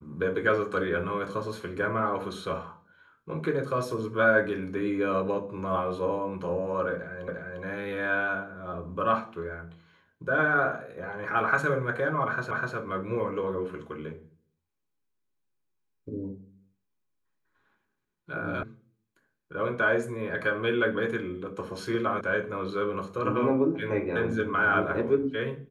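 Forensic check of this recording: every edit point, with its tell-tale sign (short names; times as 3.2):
7.28 repeat of the last 0.35 s
12.51 repeat of the last 0.25 s
18.63 sound cut off
22.21 sound cut off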